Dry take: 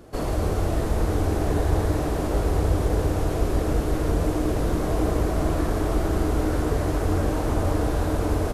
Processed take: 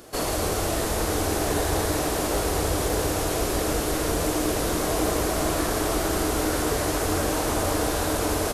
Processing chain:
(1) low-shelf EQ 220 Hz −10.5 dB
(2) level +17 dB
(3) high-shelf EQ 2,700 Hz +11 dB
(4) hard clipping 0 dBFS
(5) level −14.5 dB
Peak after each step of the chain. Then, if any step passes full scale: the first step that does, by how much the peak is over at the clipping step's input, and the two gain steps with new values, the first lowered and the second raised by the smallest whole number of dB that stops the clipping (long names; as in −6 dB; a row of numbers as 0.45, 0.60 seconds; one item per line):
−15.5, +1.5, +3.0, 0.0, −14.5 dBFS
step 2, 3.0 dB
step 2 +14 dB, step 5 −11.5 dB